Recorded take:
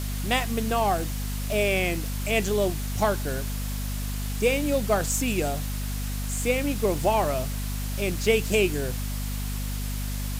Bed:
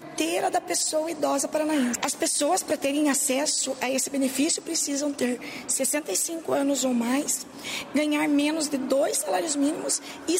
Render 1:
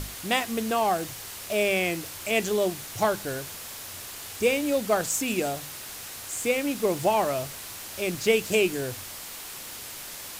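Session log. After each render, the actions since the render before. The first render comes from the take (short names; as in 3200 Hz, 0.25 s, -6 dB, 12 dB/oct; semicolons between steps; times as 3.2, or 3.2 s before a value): notches 50/100/150/200/250 Hz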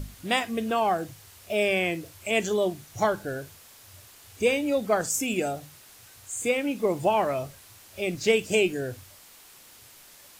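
noise print and reduce 12 dB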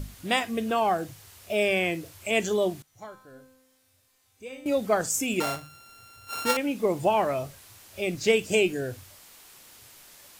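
2.82–4.66 resonator 260 Hz, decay 1.1 s, mix 90%; 5.4–6.57 sample sorter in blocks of 32 samples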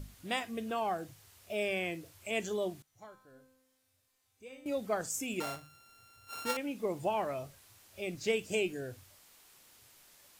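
gain -9.5 dB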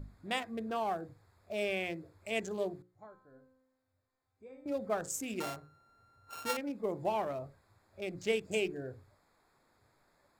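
Wiener smoothing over 15 samples; notches 60/120/180/240/300/360/420/480/540 Hz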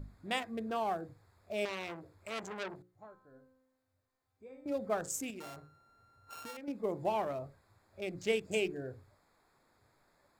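1.65–3.23 core saturation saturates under 3200 Hz; 5.3–6.68 compressor, threshold -43 dBFS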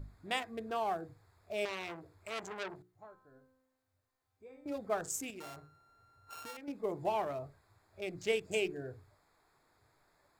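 bell 220 Hz -6 dB 0.57 oct; notch 540 Hz, Q 12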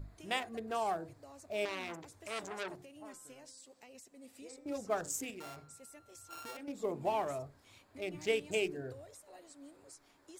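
add bed -30 dB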